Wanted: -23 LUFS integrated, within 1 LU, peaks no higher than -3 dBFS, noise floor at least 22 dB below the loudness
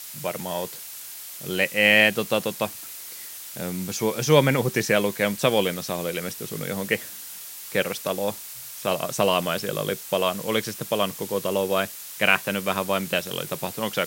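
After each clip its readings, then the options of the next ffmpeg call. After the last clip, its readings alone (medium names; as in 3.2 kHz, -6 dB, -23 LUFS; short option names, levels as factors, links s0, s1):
noise floor -39 dBFS; noise floor target -46 dBFS; loudness -24.0 LUFS; peak level -2.0 dBFS; loudness target -23.0 LUFS
-> -af "afftdn=nr=7:nf=-39"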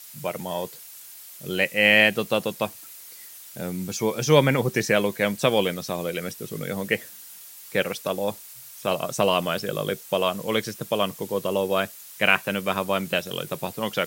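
noise floor -44 dBFS; noise floor target -47 dBFS
-> -af "afftdn=nr=6:nf=-44"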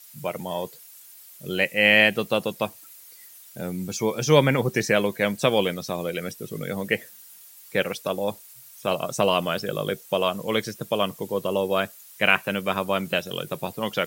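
noise floor -48 dBFS; loudness -24.5 LUFS; peak level -2.0 dBFS; loudness target -23.0 LUFS
-> -af "volume=1.19,alimiter=limit=0.708:level=0:latency=1"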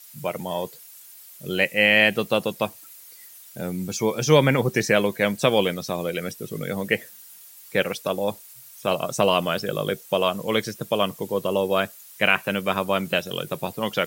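loudness -23.5 LUFS; peak level -3.0 dBFS; noise floor -46 dBFS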